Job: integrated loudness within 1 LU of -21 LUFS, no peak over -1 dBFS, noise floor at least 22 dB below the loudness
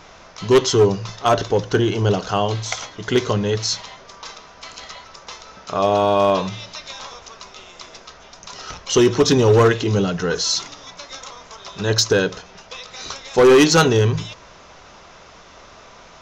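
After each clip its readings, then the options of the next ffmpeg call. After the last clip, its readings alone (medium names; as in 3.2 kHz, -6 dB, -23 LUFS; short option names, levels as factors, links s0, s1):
loudness -18.0 LUFS; peak level -7.0 dBFS; loudness target -21.0 LUFS
-> -af "volume=0.708"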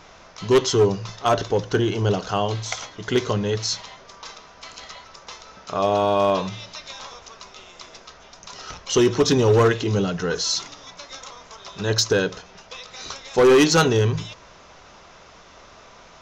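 loudness -21.0 LUFS; peak level -10.0 dBFS; noise floor -48 dBFS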